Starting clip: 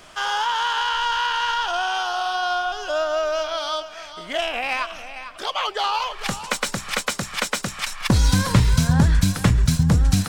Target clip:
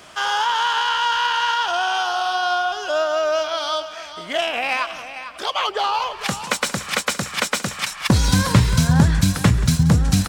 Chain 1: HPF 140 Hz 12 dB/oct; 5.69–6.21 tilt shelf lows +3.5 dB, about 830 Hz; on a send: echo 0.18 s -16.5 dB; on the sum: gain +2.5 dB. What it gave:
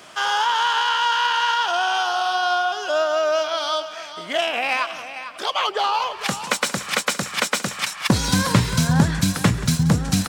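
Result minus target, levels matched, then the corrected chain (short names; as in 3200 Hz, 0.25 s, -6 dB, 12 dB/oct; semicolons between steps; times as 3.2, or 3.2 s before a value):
125 Hz band -3.0 dB
HPF 67 Hz 12 dB/oct; 5.69–6.21 tilt shelf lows +3.5 dB, about 830 Hz; on a send: echo 0.18 s -16.5 dB; on the sum: gain +2.5 dB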